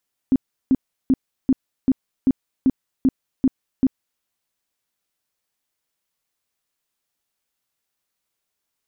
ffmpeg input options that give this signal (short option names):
-f lavfi -i "aevalsrc='0.266*sin(2*PI*263*mod(t,0.39))*lt(mod(t,0.39),10/263)':d=3.9:s=44100"